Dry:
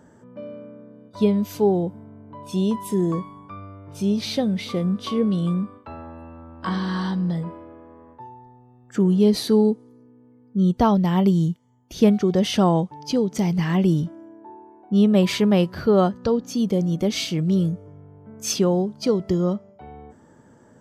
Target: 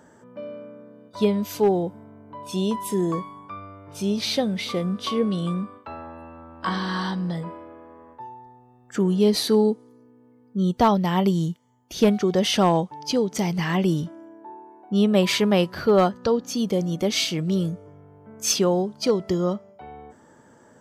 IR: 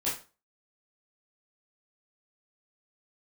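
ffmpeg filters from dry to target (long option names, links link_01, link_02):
-af "lowshelf=frequency=330:gain=-9.5,aeval=exprs='clip(val(0),-1,0.158)':channel_layout=same,volume=3.5dB"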